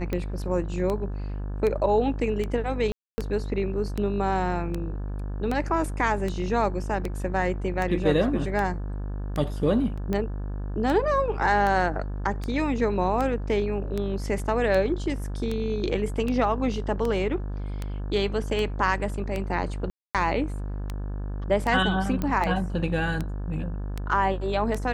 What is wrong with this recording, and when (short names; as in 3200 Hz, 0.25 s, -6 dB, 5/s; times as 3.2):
buzz 50 Hz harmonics 35 -31 dBFS
tick 78 rpm -16 dBFS
2.92–3.18 gap 0.26 s
9.97–9.98 gap 5.9 ms
19.9–20.15 gap 0.247 s
22.22 pop -15 dBFS